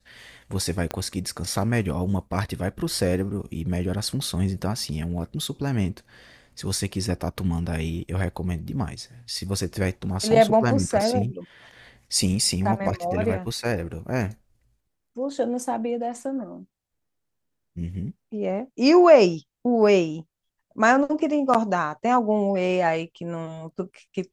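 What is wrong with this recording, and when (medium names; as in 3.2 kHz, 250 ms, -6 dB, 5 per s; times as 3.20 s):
0.91 s: pop -12 dBFS
11.01 s: dropout 2.5 ms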